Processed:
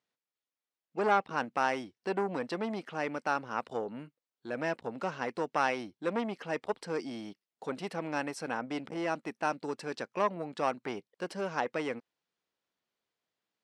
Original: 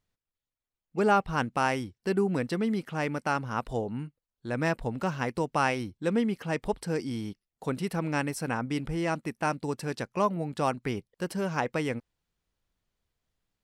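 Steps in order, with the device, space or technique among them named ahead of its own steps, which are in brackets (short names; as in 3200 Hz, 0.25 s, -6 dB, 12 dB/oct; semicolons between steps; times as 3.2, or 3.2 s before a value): public-address speaker with an overloaded transformer (core saturation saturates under 860 Hz; BPF 290–6100 Hz); gain -1 dB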